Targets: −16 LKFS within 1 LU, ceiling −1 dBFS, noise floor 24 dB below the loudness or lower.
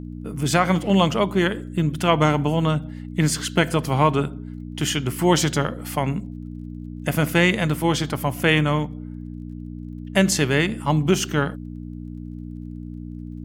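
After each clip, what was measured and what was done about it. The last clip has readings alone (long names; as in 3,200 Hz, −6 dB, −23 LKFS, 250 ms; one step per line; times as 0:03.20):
crackle rate 22 per second; mains hum 60 Hz; hum harmonics up to 300 Hz; level of the hum −32 dBFS; integrated loudness −21.5 LKFS; sample peak −3.5 dBFS; target loudness −16.0 LKFS
→ click removal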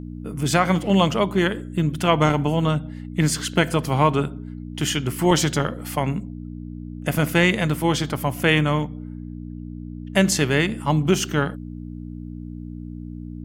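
crackle rate 0 per second; mains hum 60 Hz; hum harmonics up to 300 Hz; level of the hum −32 dBFS
→ hum removal 60 Hz, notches 5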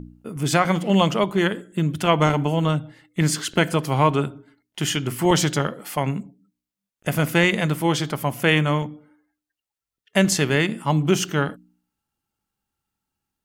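mains hum none found; integrated loudness −21.5 LKFS; sample peak −4.0 dBFS; target loudness −16.0 LKFS
→ level +5.5 dB
brickwall limiter −1 dBFS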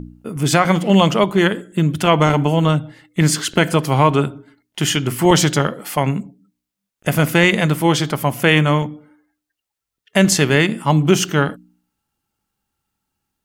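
integrated loudness −16.5 LKFS; sample peak −1.0 dBFS; background noise floor −83 dBFS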